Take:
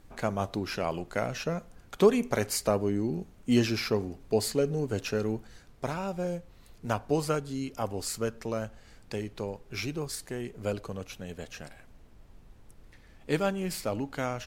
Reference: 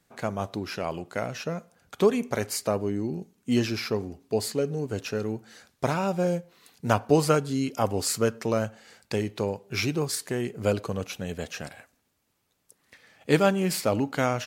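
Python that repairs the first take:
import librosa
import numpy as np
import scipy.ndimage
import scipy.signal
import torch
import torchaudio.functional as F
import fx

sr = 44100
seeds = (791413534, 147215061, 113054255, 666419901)

y = fx.noise_reduce(x, sr, print_start_s=12.71, print_end_s=13.21, reduce_db=12.0)
y = fx.gain(y, sr, db=fx.steps((0.0, 0.0), (5.47, 7.0)))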